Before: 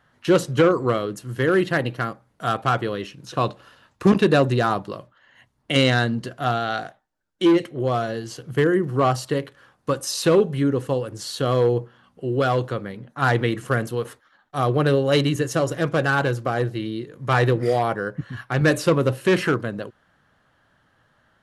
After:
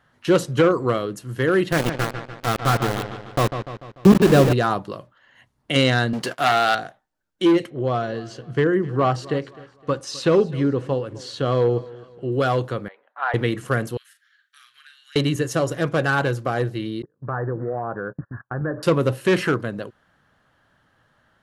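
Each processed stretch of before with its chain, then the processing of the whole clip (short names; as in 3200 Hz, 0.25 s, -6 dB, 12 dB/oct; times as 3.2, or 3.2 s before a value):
1.72–4.53 tilt -2 dB/oct + sample gate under -19 dBFS + dark delay 0.147 s, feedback 51%, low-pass 3900 Hz, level -8.5 dB
6.13–6.75 sample leveller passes 3 + HPF 610 Hz 6 dB/oct
7.7–12.32 air absorption 95 m + feedback echo 0.257 s, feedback 37%, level -20 dB
12.88–13.34 HPF 650 Hz 24 dB/oct + air absorption 490 m
13.97–15.16 elliptic high-pass 1600 Hz, stop band 60 dB + compressor 2.5:1, threshold -54 dBFS + doubler 40 ms -7 dB
17.02–18.83 gate -35 dBFS, range -27 dB + steep low-pass 1700 Hz 72 dB/oct + compressor 2.5:1, threshold -25 dBFS
whole clip: dry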